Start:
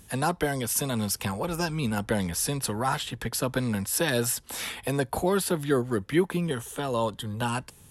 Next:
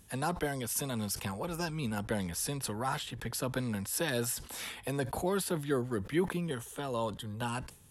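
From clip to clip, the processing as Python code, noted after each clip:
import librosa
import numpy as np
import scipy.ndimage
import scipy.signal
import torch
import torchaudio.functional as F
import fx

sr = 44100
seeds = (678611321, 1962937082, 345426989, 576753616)

y = fx.sustainer(x, sr, db_per_s=120.0)
y = y * 10.0 ** (-7.0 / 20.0)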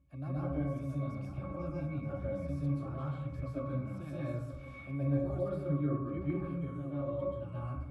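y = fx.octave_resonator(x, sr, note='C#', decay_s=0.14)
y = y + 10.0 ** (-14.5 / 20.0) * np.pad(y, (int(929 * sr / 1000.0), 0))[:len(y)]
y = fx.rev_plate(y, sr, seeds[0], rt60_s=0.77, hf_ratio=0.45, predelay_ms=115, drr_db=-7.5)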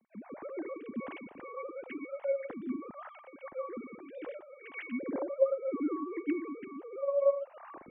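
y = fx.sine_speech(x, sr)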